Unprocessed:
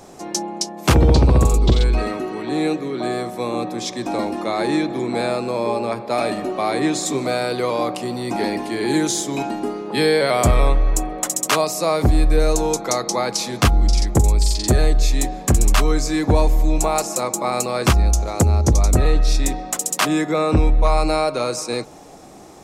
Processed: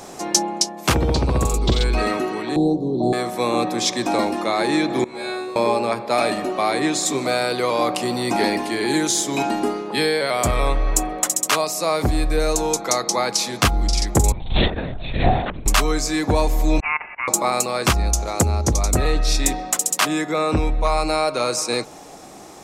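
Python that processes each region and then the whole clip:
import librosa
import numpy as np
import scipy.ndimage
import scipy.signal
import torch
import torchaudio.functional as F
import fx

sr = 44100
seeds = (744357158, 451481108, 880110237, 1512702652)

y = fx.chain(x, sr, fx.ellip_bandstop(low_hz=850.0, high_hz=4000.0, order=3, stop_db=50),
    fx.tilt_eq(slope=-4.0), at=(2.56, 3.13))
y = fx.chain(y, sr, fx.notch(hz=7900.0, q=17.0),
    fx.comb_fb(f0_hz=74.0, decay_s=1.0, harmonics='all', damping=0.0, mix_pct=100), at=(5.04, 5.56))
y = fx.chain(y, sr, fx.over_compress(threshold_db=-21.0, ratio=-0.5),
    fx.lpc_vocoder(seeds[0], excitation='whisper', order=10), at=(14.32, 15.66))
y = fx.chain(y, sr, fx.highpass(hz=1500.0, slope=24),
    fx.over_compress(threshold_db=-30.0, ratio=-0.5),
    fx.freq_invert(carrier_hz=3400), at=(16.8, 17.28))
y = fx.low_shelf(y, sr, hz=210.0, db=-8.0)
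y = fx.rider(y, sr, range_db=10, speed_s=0.5)
y = fx.peak_eq(y, sr, hz=480.0, db=-2.5, octaves=2.0)
y = y * librosa.db_to_amplitude(3.0)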